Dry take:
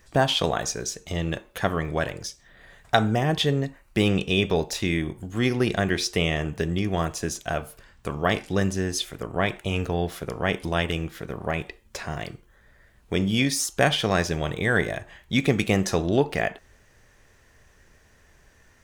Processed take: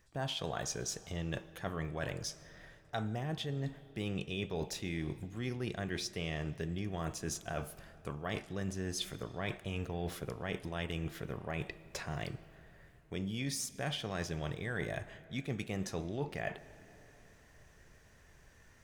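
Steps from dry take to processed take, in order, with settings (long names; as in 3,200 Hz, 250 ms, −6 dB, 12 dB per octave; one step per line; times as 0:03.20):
parametric band 130 Hz +4.5 dB 0.77 octaves
reversed playback
downward compressor 6 to 1, threshold −30 dBFS, peak gain reduction 16 dB
reversed playback
convolution reverb RT60 3.7 s, pre-delay 75 ms, DRR 17.5 dB
level −5 dB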